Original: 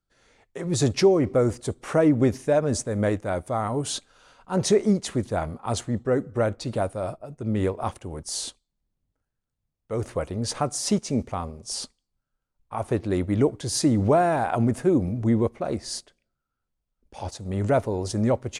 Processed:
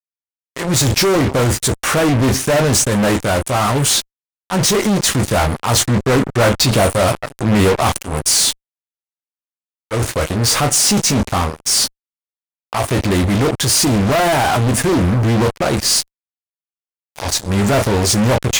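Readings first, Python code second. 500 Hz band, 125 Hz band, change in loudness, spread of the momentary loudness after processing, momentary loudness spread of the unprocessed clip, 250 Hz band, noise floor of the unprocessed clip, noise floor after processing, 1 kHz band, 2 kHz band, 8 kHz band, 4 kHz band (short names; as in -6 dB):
+6.5 dB, +10.5 dB, +10.0 dB, 6 LU, 13 LU, +7.0 dB, -83 dBFS, under -85 dBFS, +10.5 dB, +16.0 dB, +17.0 dB, +17.5 dB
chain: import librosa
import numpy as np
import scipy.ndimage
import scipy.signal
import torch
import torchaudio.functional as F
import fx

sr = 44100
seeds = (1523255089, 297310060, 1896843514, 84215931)

y = fx.low_shelf(x, sr, hz=250.0, db=11.0)
y = fx.room_early_taps(y, sr, ms=(15, 34), db=(-7.5, -13.0))
y = fx.transient(y, sr, attack_db=-5, sustain_db=3)
y = fx.tilt_shelf(y, sr, db=-8.0, hz=820.0)
y = fx.fuzz(y, sr, gain_db=32.0, gate_db=-34.0)
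y = fx.rider(y, sr, range_db=10, speed_s=2.0)
y = y * librosa.db_to_amplitude(2.0)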